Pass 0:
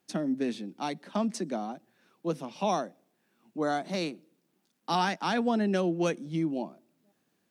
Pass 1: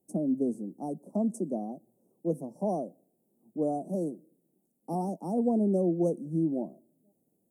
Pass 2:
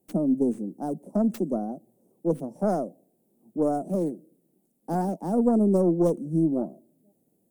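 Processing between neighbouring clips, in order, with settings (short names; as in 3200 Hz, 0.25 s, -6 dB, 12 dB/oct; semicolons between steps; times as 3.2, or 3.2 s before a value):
inverse Chebyshev band-stop 1700–3600 Hz, stop band 70 dB; gain +1.5 dB
tracing distortion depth 0.27 ms; gain +5 dB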